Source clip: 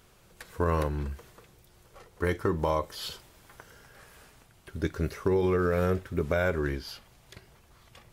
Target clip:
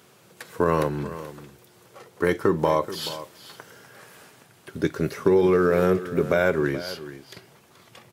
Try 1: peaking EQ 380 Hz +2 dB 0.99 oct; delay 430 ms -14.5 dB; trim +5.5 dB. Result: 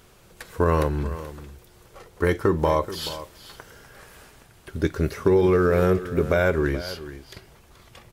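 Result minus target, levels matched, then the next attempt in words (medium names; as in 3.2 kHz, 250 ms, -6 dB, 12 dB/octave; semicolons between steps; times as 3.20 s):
125 Hz band +4.0 dB
high-pass 120 Hz 24 dB/octave; peaking EQ 380 Hz +2 dB 0.99 oct; delay 430 ms -14.5 dB; trim +5.5 dB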